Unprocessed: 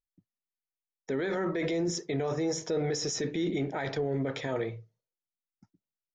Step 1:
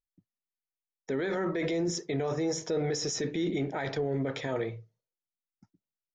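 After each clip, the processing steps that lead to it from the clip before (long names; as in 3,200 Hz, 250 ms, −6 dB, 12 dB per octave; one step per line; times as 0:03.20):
no processing that can be heard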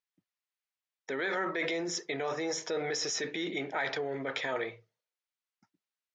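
resonant band-pass 2,100 Hz, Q 0.59
level +5.5 dB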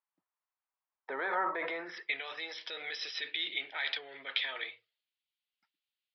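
band-pass filter sweep 970 Hz → 3,200 Hz, 0:01.62–0:02.23
downsampling to 11,025 Hz
level +8 dB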